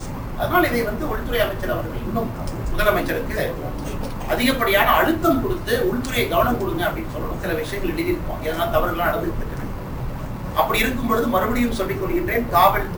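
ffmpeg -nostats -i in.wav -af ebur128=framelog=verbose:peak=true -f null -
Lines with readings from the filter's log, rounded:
Integrated loudness:
  I:         -21.6 LUFS
  Threshold: -31.6 LUFS
Loudness range:
  LRA:         4.3 LU
  Threshold: -41.8 LUFS
  LRA low:   -24.0 LUFS
  LRA high:  -19.7 LUFS
True peak:
  Peak:       -2.2 dBFS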